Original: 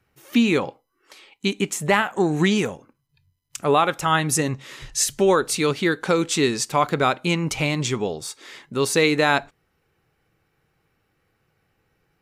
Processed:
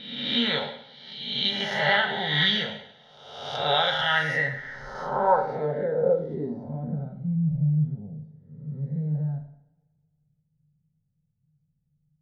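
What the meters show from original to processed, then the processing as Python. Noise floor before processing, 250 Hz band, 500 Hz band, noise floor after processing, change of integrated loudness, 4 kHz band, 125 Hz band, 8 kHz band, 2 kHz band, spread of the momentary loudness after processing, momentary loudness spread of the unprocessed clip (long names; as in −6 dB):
−71 dBFS, −8.5 dB, −6.0 dB, −74 dBFS, −4.0 dB, +2.5 dB, 0.0 dB, below −25 dB, −2.0 dB, 16 LU, 10 LU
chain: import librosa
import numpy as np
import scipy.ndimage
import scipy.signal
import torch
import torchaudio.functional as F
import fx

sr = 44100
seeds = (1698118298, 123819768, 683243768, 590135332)

y = fx.spec_swells(x, sr, rise_s=1.12)
y = fx.low_shelf(y, sr, hz=250.0, db=-4.5)
y = fx.fixed_phaser(y, sr, hz=1700.0, stages=8)
y = fx.rev_double_slope(y, sr, seeds[0], early_s=0.68, late_s=2.0, knee_db=-23, drr_db=2.5)
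y = fx.filter_sweep_lowpass(y, sr, from_hz=3400.0, to_hz=160.0, start_s=3.9, end_s=7.25, q=4.2)
y = y * 10.0 ** (-6.5 / 20.0)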